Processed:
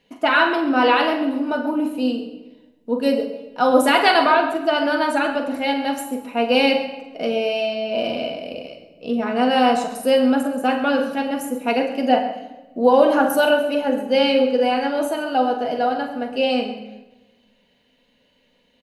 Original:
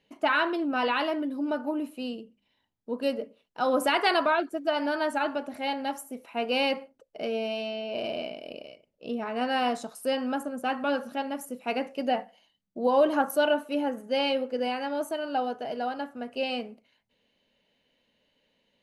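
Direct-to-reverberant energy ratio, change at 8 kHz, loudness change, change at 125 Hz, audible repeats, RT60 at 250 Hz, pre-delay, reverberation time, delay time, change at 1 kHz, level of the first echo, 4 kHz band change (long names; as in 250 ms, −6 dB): 3.0 dB, +8.5 dB, +9.5 dB, can't be measured, 2, 1.7 s, 4 ms, 1.1 s, 43 ms, +9.5 dB, −9.5 dB, +8.5 dB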